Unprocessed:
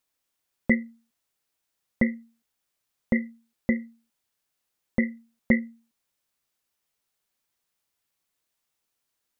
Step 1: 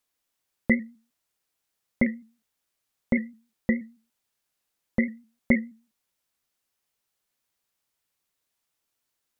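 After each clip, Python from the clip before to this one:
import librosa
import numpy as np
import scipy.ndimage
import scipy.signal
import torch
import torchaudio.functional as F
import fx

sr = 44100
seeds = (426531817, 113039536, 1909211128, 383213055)

y = fx.vibrato_shape(x, sr, shape='saw_up', rate_hz=6.3, depth_cents=100.0)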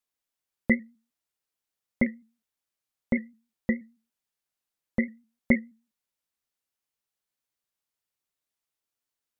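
y = fx.upward_expand(x, sr, threshold_db=-32.0, expansion=1.5)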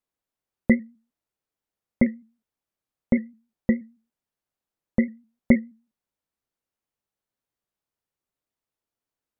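y = fx.tilt_shelf(x, sr, db=6.0, hz=1400.0)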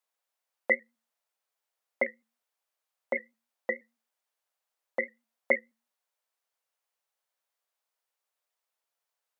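y = scipy.signal.sosfilt(scipy.signal.butter(4, 540.0, 'highpass', fs=sr, output='sos'), x)
y = F.gain(torch.from_numpy(y), 3.5).numpy()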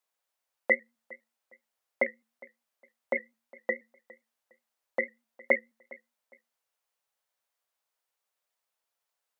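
y = fx.echo_feedback(x, sr, ms=409, feedback_pct=25, wet_db=-22.5)
y = F.gain(torch.from_numpy(y), 1.0).numpy()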